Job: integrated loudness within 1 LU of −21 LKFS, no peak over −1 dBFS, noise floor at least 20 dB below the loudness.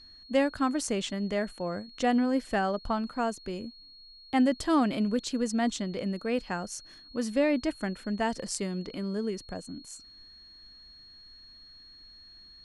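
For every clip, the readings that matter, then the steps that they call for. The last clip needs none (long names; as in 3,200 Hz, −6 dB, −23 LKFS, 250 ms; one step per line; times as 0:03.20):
interfering tone 4,300 Hz; level of the tone −50 dBFS; integrated loudness −30.0 LKFS; sample peak −13.0 dBFS; target loudness −21.0 LKFS
→ notch filter 4,300 Hz, Q 30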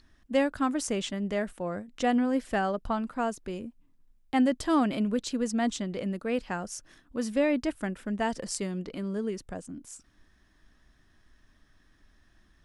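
interfering tone none found; integrated loudness −30.0 LKFS; sample peak −12.5 dBFS; target loudness −21.0 LKFS
→ level +9 dB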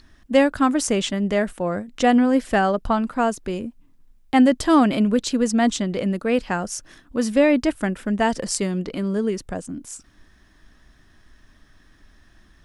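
integrated loudness −21.0 LKFS; sample peak −3.5 dBFS; background noise floor −55 dBFS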